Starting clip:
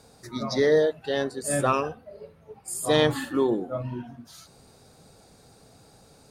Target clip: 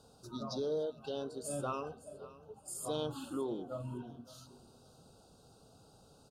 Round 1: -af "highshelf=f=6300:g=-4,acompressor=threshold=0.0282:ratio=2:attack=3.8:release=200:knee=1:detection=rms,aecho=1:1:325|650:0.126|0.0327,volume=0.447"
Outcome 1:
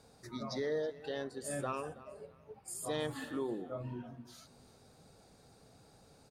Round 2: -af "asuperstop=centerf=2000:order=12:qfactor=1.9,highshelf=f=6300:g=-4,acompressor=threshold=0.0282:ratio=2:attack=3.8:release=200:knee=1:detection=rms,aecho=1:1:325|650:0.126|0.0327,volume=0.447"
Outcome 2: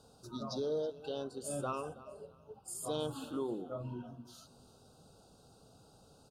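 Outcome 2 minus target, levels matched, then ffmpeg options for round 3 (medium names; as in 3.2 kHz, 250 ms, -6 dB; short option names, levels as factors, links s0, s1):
echo 237 ms early
-af "asuperstop=centerf=2000:order=12:qfactor=1.9,highshelf=f=6300:g=-4,acompressor=threshold=0.0282:ratio=2:attack=3.8:release=200:knee=1:detection=rms,aecho=1:1:562|1124:0.126|0.0327,volume=0.447"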